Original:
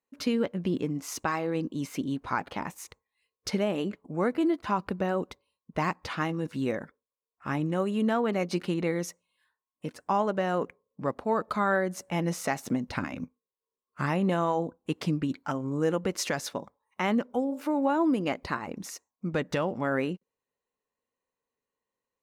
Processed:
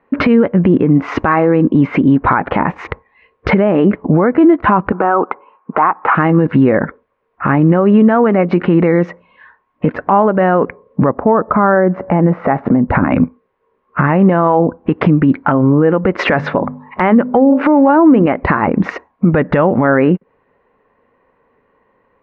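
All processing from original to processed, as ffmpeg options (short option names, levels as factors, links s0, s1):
-filter_complex "[0:a]asettb=1/sr,asplit=3[s0][s1][s2];[s0]atrim=end=4.924[s3];[s1]atrim=start=4.92:end=6.15,asetpts=PTS-STARTPTS,afade=t=in:d=0.004:c=qsin,afade=t=out:st=1.226:d=0.004:c=qsin,highpass=490,equalizer=f=570:t=q:w=4:g=-7,equalizer=f=830:t=q:w=4:g=5,equalizer=f=1300:t=q:w=4:g=6,equalizer=f=1900:t=q:w=4:g=-9,lowpass=f=2200:w=0.5412,lowpass=f=2200:w=1.3066,acontrast=67[s4];[s2]atrim=start=6.146[s5];[s3][s4]acrossfade=d=0.004:c1=hsin:c2=qsin[s6];[s6][s5]acrossfade=d=0.004:c1=qsin:c2=hsin,asettb=1/sr,asplit=3[s7][s8][s9];[s7]atrim=end=11.094[s10];[s8]atrim=start=11.09:end=13.11,asetpts=PTS-STARTPTS,afade=t=in:d=0.004:c=qsin,afade=t=out:st=2.016:d=0.004:c=qsin,lowpass=1200,aemphasis=mode=production:type=75kf[s11];[s9]atrim=start=13.106[s12];[s10][s11]acrossfade=d=0.004:c1=hsin:c2=qsin[s13];[s13][s12]acrossfade=d=0.004:c1=qsin:c2=hsin,asettb=1/sr,asplit=3[s14][s15][s16];[s14]atrim=end=16.194[s17];[s15]atrim=start=16.19:end=18.26,asetpts=PTS-STARTPTS,afade=t=in:d=0.004:c=qsin,afade=t=out:st=2.066:d=0.004:c=qsin,bandreject=f=50:t=h:w=6,bandreject=f=100:t=h:w=6,bandreject=f=150:t=h:w=6,bandreject=f=200:t=h:w=6,bandreject=f=250:t=h:w=6,acontrast=83[s18];[s16]atrim=start=18.256[s19];[s17][s18]acrossfade=d=0.004:c1=hsin:c2=qsin[s20];[s20][s19]acrossfade=d=0.004:c1=qsin:c2=hsin,lowpass=f=2000:w=0.5412,lowpass=f=2000:w=1.3066,acompressor=threshold=0.0126:ratio=6,alimiter=level_in=47.3:limit=0.891:release=50:level=0:latency=1,volume=0.891"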